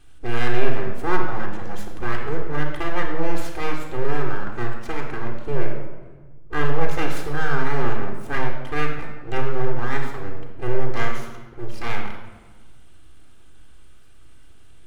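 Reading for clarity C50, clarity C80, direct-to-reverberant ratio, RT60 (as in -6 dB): 5.0 dB, 7.0 dB, 0.5 dB, 1.3 s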